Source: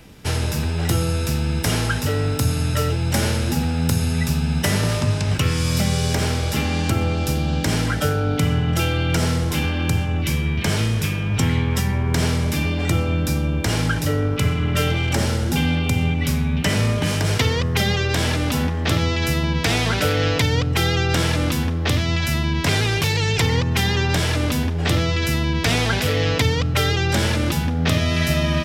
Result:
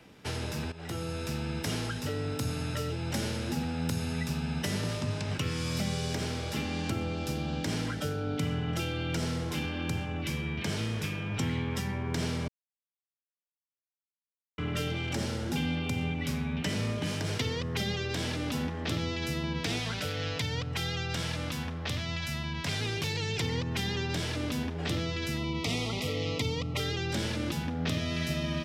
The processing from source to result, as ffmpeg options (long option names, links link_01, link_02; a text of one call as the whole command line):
ffmpeg -i in.wav -filter_complex "[0:a]asettb=1/sr,asplit=3[link_01][link_02][link_03];[link_01]atrim=end=19.794[link_04];[link_02]atrim=start=19.79:end=22.81,asetpts=PTS-STARTPTS,afade=type=in:duration=0.004:curve=qsin,afade=type=out:start_time=3.016:duration=0.004:curve=qsin,equalizer=frequency=330:width=1.5:gain=-9[link_05];[link_03]atrim=start=22.806[link_06];[link_04][link_05]acrossfade=duration=0.004:curve1=hsin:curve2=qsin[link_07];[link_07][link_06]acrossfade=duration=0.004:curve1=qsin:curve2=hsin,asettb=1/sr,asplit=3[link_08][link_09][link_10];[link_08]atrim=end=25.374[link_11];[link_09]atrim=start=25.37:end=26.8,asetpts=PTS-STARTPTS,afade=type=in:duration=0.004:curve=qsin,afade=type=out:start_time=1.426:duration=0.004:curve=qsin,asuperstop=centerf=1600:order=12:qfactor=3[link_12];[link_10]atrim=start=26.796[link_13];[link_11][link_12]acrossfade=duration=0.004:curve1=hsin:curve2=qsin[link_14];[link_14][link_13]acrossfade=duration=0.004:curve1=qsin:curve2=hsin,asplit=4[link_15][link_16][link_17][link_18];[link_15]atrim=end=0.72,asetpts=PTS-STARTPTS,afade=type=out:start_time=0.716:duration=0.004:curve=hsin:silence=0.188365[link_19];[link_16]atrim=start=0.72:end=12.48,asetpts=PTS-STARTPTS,afade=type=in:duration=0.71:curve=qsin:silence=0.188365,afade=type=out:start_time=11.756:duration=0.004:curve=hsin[link_20];[link_17]atrim=start=12.48:end=14.58,asetpts=PTS-STARTPTS,volume=0[link_21];[link_18]atrim=start=14.58,asetpts=PTS-STARTPTS,afade=type=in:duration=0.004:curve=hsin[link_22];[link_19][link_20][link_21][link_22]concat=n=4:v=0:a=1,highpass=frequency=230:poles=1,highshelf=frequency=6300:gain=-11.5,acrossover=split=390|3000[link_23][link_24][link_25];[link_24]acompressor=threshold=-33dB:ratio=6[link_26];[link_23][link_26][link_25]amix=inputs=3:normalize=0,volume=-6dB" out.wav